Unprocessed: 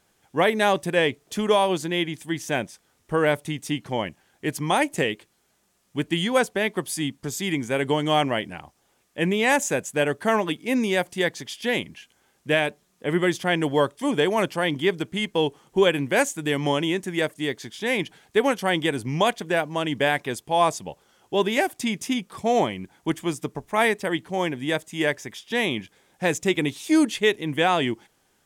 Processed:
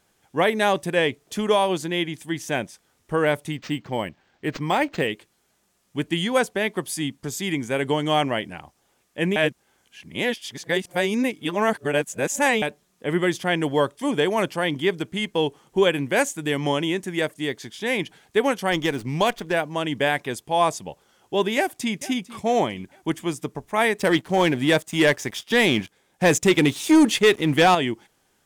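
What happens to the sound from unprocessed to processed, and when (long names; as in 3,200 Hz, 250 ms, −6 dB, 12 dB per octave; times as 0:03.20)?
0:03.52–0:05.07: linearly interpolated sample-rate reduction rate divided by 4×
0:09.36–0:12.62: reverse
0:18.72–0:19.53: windowed peak hold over 3 samples
0:21.56–0:21.99: delay throw 450 ms, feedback 40%, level −17.5 dB
0:23.99–0:27.75: leveller curve on the samples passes 2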